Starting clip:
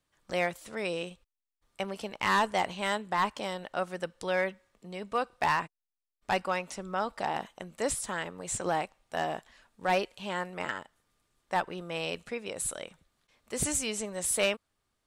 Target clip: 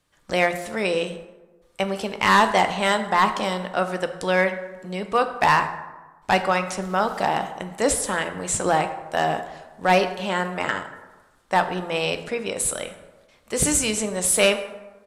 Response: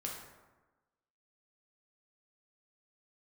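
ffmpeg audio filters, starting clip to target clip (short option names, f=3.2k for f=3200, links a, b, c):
-filter_complex "[0:a]asplit=2[a][b];[1:a]atrim=start_sample=2205[c];[b][c]afir=irnorm=-1:irlink=0,volume=-2dB[d];[a][d]amix=inputs=2:normalize=0,asettb=1/sr,asplit=3[e][f][g];[e]atrim=end=6.824[h];[f]atrim=start=6.82:end=7.35,asetpts=PTS-STARTPTS,afade=t=in:d=0.004:c=qsin,afade=t=out:st=0.526:d=0.004:c=qsin,aeval=exprs='val(0)*gte(abs(val(0)),0.00501)':c=same[i];[g]atrim=start=7.346[j];[h][i]acrossfade=d=0.004:c1=hsin:c2=qsin[k];[k][j]acrossfade=d=0.004:c1=qsin:c2=hsin,aresample=32000,aresample=44100,volume=5.5dB"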